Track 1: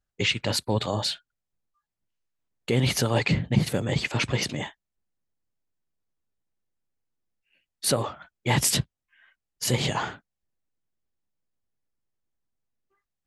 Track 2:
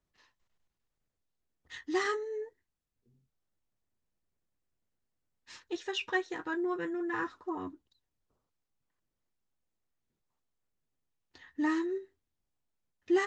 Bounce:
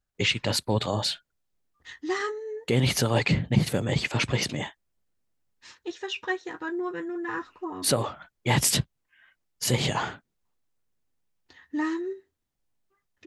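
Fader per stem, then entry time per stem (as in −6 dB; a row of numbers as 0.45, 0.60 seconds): 0.0, +2.0 decibels; 0.00, 0.15 seconds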